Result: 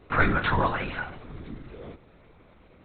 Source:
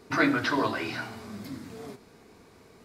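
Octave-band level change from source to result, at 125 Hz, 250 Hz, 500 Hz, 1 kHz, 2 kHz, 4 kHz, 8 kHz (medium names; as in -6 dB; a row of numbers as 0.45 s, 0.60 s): +8.5 dB, -3.5 dB, +0.5 dB, +4.0 dB, +1.5 dB, -2.5 dB, under -30 dB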